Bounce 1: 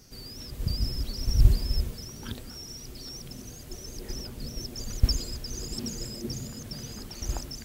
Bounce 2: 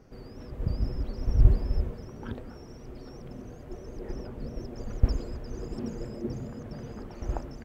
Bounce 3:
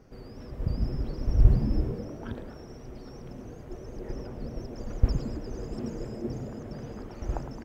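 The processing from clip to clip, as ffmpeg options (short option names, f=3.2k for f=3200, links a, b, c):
-af "firequalizer=gain_entry='entry(150,0);entry(490,6);entry(4000,-17);entry(10000,-23)':delay=0.05:min_phase=1"
-filter_complex "[0:a]asplit=8[a][b][c][d][e][f][g][h];[b]adelay=108,afreqshift=88,volume=-12.5dB[i];[c]adelay=216,afreqshift=176,volume=-16.9dB[j];[d]adelay=324,afreqshift=264,volume=-21.4dB[k];[e]adelay=432,afreqshift=352,volume=-25.8dB[l];[f]adelay=540,afreqshift=440,volume=-30.2dB[m];[g]adelay=648,afreqshift=528,volume=-34.7dB[n];[h]adelay=756,afreqshift=616,volume=-39.1dB[o];[a][i][j][k][l][m][n][o]amix=inputs=8:normalize=0"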